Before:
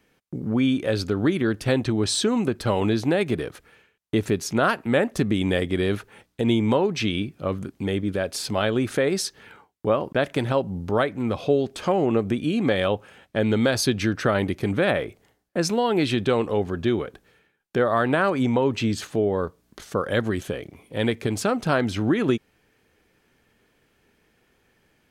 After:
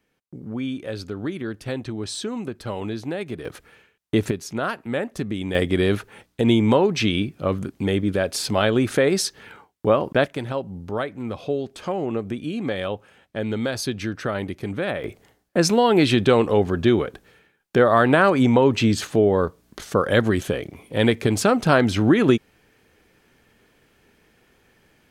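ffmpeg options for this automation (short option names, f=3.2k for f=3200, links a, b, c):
-af "asetnsamples=n=441:p=0,asendcmd='3.45 volume volume 2.5dB;4.31 volume volume -5dB;5.55 volume volume 3.5dB;10.26 volume volume -4.5dB;15.04 volume volume 5dB',volume=-7dB"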